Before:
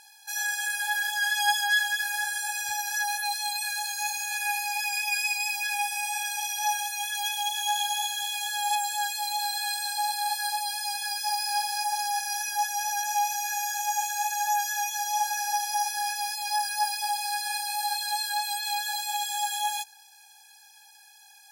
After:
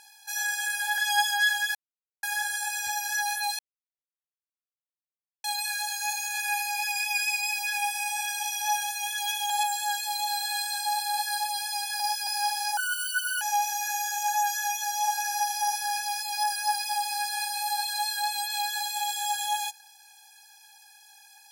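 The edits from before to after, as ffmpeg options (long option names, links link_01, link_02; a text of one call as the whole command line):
ffmpeg -i in.wav -filter_complex "[0:a]asplit=10[link_01][link_02][link_03][link_04][link_05][link_06][link_07][link_08][link_09][link_10];[link_01]atrim=end=0.982[link_11];[link_02]atrim=start=1.278:end=2.05,asetpts=PTS-STARTPTS,afade=type=out:start_time=0.768:duration=0.004:curve=hsin,apad=pad_dur=0.48[link_12];[link_03]atrim=start=2.05:end=3.41,asetpts=PTS-STARTPTS,afade=type=in:duration=0.004:curve=hsin,afade=type=out:start_time=1.356:duration=0.004:curve=hsin,apad=pad_dur=1.85[link_13];[link_04]atrim=start=3.41:end=7.472,asetpts=PTS-STARTPTS,afade=type=in:duration=0.004:curve=hsin[link_14];[link_05]atrim=start=8.618:end=11.122[link_15];[link_06]atrim=start=11.118:end=11.392,asetpts=PTS-STARTPTS,areverse[link_16];[link_07]atrim=start=11.388:end=11.894[link_17];[link_08]atrim=start=11.89:end=13.04,asetpts=PTS-STARTPTS,asetrate=78939,aresample=44100,atrim=end_sample=28332,asetpts=PTS-STARTPTS[link_18];[link_09]atrim=start=13.036:end=13.912[link_19];[link_10]atrim=start=14.408[link_20];[link_12][link_13][link_14]concat=n=3:v=0:a=1[link_21];[link_11][link_21]acrossfade=duration=0.004:curve1=hsin:curve2=hsin[link_22];[link_22][link_15]acrossfade=duration=0.004:curve1=hsin:curve2=hsin[link_23];[link_23][link_16]acrossfade=duration=0.004:curve1=hsin:curve2=hsin[link_24];[link_24][link_17]acrossfade=duration=0.004:curve1=hsin:curve2=hsin[link_25];[link_25][link_18]acrossfade=duration=0.004:curve1=hsin:curve2=hsin[link_26];[link_26][link_19]acrossfade=duration=0.004:curve1=hsin:curve2=hsin[link_27];[link_27][link_20]acrossfade=duration=0.004:curve1=hsin:curve2=hsin" out.wav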